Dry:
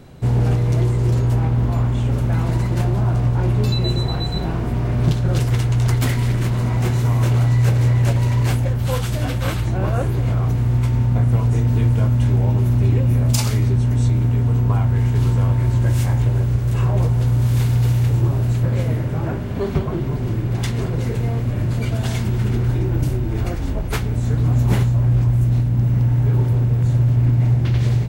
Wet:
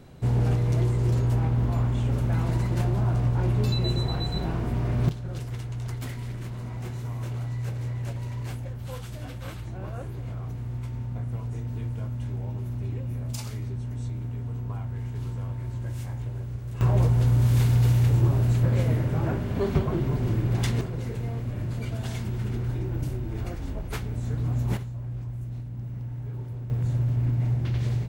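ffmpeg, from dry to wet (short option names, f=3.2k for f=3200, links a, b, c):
-af "asetnsamples=n=441:p=0,asendcmd='5.09 volume volume -15.5dB;16.81 volume volume -3.5dB;20.81 volume volume -10dB;24.77 volume volume -18dB;26.7 volume volume -9dB',volume=-6dB"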